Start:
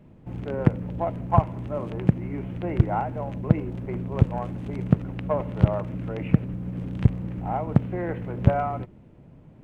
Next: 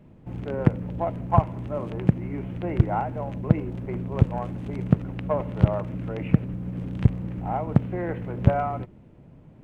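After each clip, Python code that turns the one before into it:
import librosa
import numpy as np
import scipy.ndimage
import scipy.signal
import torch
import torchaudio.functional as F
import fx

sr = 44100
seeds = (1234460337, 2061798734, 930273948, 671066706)

y = x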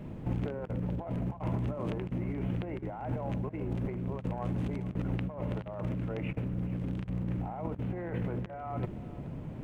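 y = fx.over_compress(x, sr, threshold_db=-37.0, ratio=-1.0)
y = y + 10.0 ** (-17.5 / 20.0) * np.pad(y, (int(429 * sr / 1000.0), 0))[:len(y)]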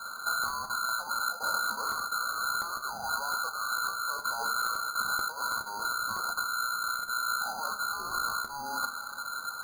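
y = fx.band_swap(x, sr, width_hz=4000)
y = fx.rev_fdn(y, sr, rt60_s=0.6, lf_ratio=1.0, hf_ratio=0.75, size_ms=20.0, drr_db=3.5)
y = np.repeat(y[::8], 8)[:len(y)]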